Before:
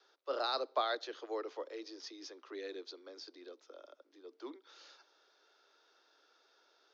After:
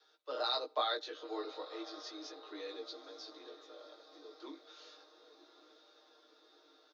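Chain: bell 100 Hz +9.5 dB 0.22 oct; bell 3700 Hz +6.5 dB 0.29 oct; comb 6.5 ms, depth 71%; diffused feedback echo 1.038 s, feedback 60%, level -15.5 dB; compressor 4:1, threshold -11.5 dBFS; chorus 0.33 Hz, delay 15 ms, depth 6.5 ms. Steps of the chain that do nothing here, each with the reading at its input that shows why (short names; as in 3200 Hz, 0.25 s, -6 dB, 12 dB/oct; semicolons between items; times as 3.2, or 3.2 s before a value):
bell 100 Hz: input band starts at 240 Hz; compressor, threshold -11.5 dBFS: input peak -17.5 dBFS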